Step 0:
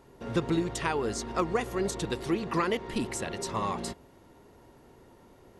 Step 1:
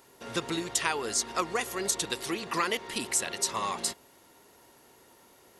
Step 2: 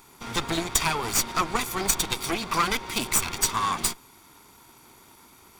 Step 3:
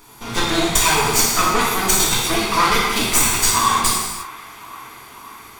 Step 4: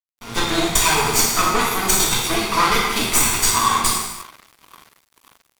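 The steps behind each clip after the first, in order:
tilt EQ +3.5 dB/octave
comb filter that takes the minimum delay 0.86 ms; trim +7 dB
feedback echo behind a band-pass 533 ms, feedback 72%, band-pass 1.4 kHz, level -18 dB; gated-style reverb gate 380 ms falling, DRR -6 dB; trim +2.5 dB
crossover distortion -33.5 dBFS

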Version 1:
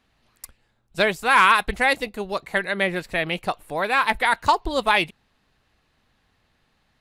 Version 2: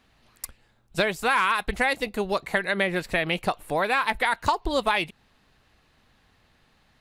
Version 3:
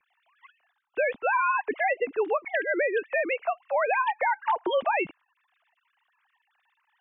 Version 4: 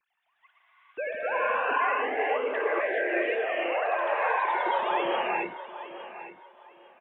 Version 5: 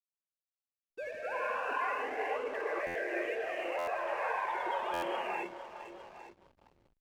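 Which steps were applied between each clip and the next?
compression 4:1, threshold -25 dBFS, peak gain reduction 11.5 dB; trim +4 dB
formants replaced by sine waves; bass shelf 330 Hz +9 dB; peak limiter -17 dBFS, peak gain reduction 8.5 dB
feedback delay 858 ms, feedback 24%, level -13.5 dB; gated-style reverb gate 480 ms rising, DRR -5 dB; ever faster or slower copies 145 ms, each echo +1 st, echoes 3, each echo -6 dB; trim -8 dB
delay 463 ms -13 dB; hysteresis with a dead band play -41.5 dBFS; buffer glitch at 2.86/3.78/4.93 s, samples 512, times 7; trim -8 dB

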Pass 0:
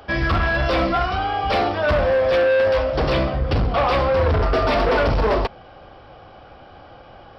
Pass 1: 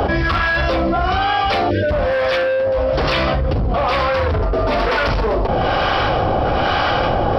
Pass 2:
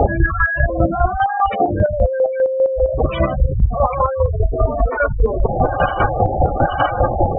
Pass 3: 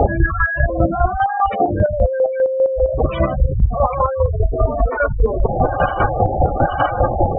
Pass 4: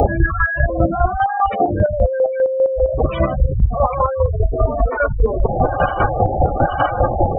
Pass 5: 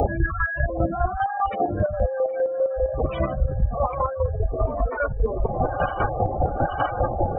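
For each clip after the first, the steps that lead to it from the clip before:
spectral selection erased 1.70–1.91 s, 610–1400 Hz; harmonic tremolo 1.1 Hz, depth 70%, crossover 960 Hz; level flattener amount 100%
octave divider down 1 oct, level -4 dB; spectral gate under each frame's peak -10 dB strong; square tremolo 5 Hz, depth 60%, duty 30%; trim +5.5 dB
dynamic bell 2.8 kHz, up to -4 dB, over -34 dBFS, Q 1.3
upward compressor, threshold -30 dBFS
feedback echo behind a band-pass 769 ms, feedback 63%, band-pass 750 Hz, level -16.5 dB; trim -7 dB

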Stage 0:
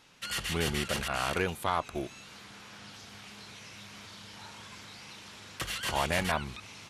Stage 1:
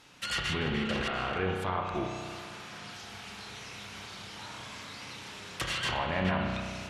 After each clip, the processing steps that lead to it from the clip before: low-pass that closes with the level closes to 2.3 kHz, closed at -25.5 dBFS; peak limiter -24.5 dBFS, peak gain reduction 7.5 dB; spring tank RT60 2.2 s, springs 32 ms, chirp 30 ms, DRR 1.5 dB; trim +2.5 dB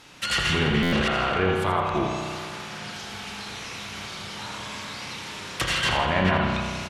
feedback delay 83 ms, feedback 48%, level -8.5 dB; buffer glitch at 0.82 s, samples 512, times 8; trim +7.5 dB

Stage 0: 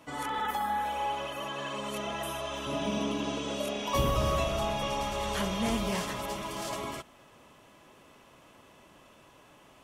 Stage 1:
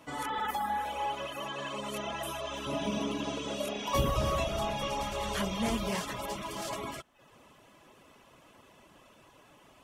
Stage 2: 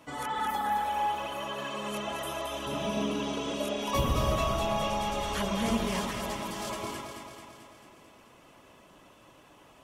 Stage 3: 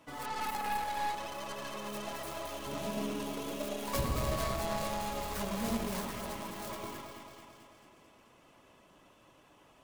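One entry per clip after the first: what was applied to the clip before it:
reverb removal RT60 0.59 s
echo whose repeats swap between lows and highs 110 ms, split 1.3 kHz, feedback 77%, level -3 dB
tracing distortion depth 0.47 ms; trim -5.5 dB

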